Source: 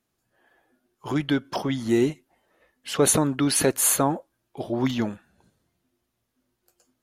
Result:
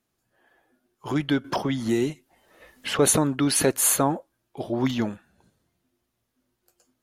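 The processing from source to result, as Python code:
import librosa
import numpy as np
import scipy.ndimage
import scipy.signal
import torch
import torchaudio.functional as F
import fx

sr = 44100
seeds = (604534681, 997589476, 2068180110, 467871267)

y = fx.band_squash(x, sr, depth_pct=70, at=(1.44, 2.99))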